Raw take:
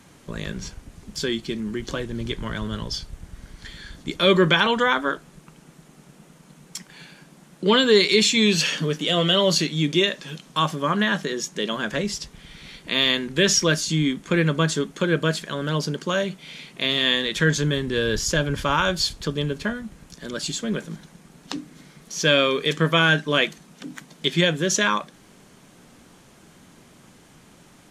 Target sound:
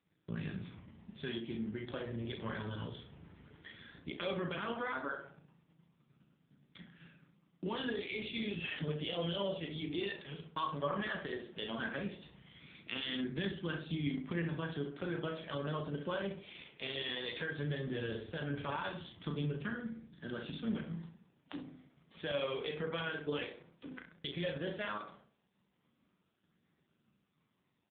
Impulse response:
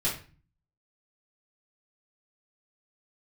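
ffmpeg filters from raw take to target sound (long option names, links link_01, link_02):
-filter_complex "[0:a]agate=range=-33dB:threshold=-39dB:ratio=3:detection=peak,asettb=1/sr,asplit=3[link_01][link_02][link_03];[link_01]atrim=end=4.484[link_04];[link_02]atrim=start=4.48:end=5.14,asetpts=PTS-STARTPTS,afade=type=in:duration=0.004:curve=qsin,afade=type=out:start_time=0.656:duration=0.004:curve=qsin,highshelf=frequency=2100:gain=-7[link_05];[link_03]atrim=start=5.136[link_06];[link_04][link_05]acrossfade=duration=0.004:curve1=hsin:curve2=qsin[link_07];[link_07][link_06]acrossfade=duration=0.004:curve1=qsin:curve2=hsin,asettb=1/sr,asplit=3[link_08][link_09][link_10];[link_08]atrim=end=16.514[link_11];[link_09]atrim=start=16.51:end=17.21,asetpts=PTS-STARTPTS,afade=type=in:duration=0.004:curve=qsin,afade=type=out:start_time=0.696:duration=0.004:curve=qsin,highpass=frequency=60:width=0.5412,highpass=frequency=60:width=1.3066[link_12];[link_10]atrim=start=17.206[link_13];[link_11][link_12]acrossfade=duration=0.004:curve1=hsin:curve2=qsin[link_14];[link_14][link_13]acrossfade=duration=0.004:curve1=qsin:curve2=hsin,alimiter=limit=-13.5dB:level=0:latency=1:release=123,acompressor=threshold=-27dB:ratio=2.5,flanger=delay=0.5:depth=1.8:regen=45:speed=0.15:shape=triangular,asplit=2[link_15][link_16];[link_16]adelay=35,volume=-5dB[link_17];[link_15][link_17]amix=inputs=2:normalize=0,asplit=2[link_18][link_19];[link_19]adelay=66,lowpass=frequency=1500:poles=1,volume=-5.5dB,asplit=2[link_20][link_21];[link_21]adelay=66,lowpass=frequency=1500:poles=1,volume=0.46,asplit=2[link_22][link_23];[link_23]adelay=66,lowpass=frequency=1500:poles=1,volume=0.46,asplit=2[link_24][link_25];[link_25]adelay=66,lowpass=frequency=1500:poles=1,volume=0.46,asplit=2[link_26][link_27];[link_27]adelay=66,lowpass=frequency=1500:poles=1,volume=0.46,asplit=2[link_28][link_29];[link_29]adelay=66,lowpass=frequency=1500:poles=1,volume=0.46[link_30];[link_18][link_20][link_22][link_24][link_26][link_28][link_30]amix=inputs=7:normalize=0,volume=-4dB" -ar 8000 -c:a libopencore_amrnb -b:a 5900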